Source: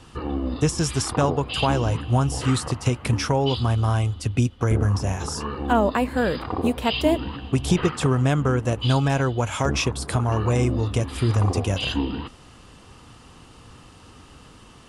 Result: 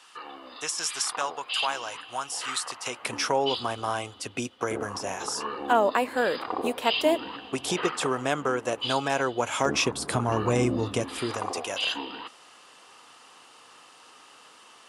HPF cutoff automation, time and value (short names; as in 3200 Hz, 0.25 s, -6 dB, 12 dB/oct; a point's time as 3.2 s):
2.67 s 1100 Hz
3.21 s 420 Hz
9.14 s 420 Hz
10.13 s 180 Hz
10.85 s 180 Hz
11.59 s 640 Hz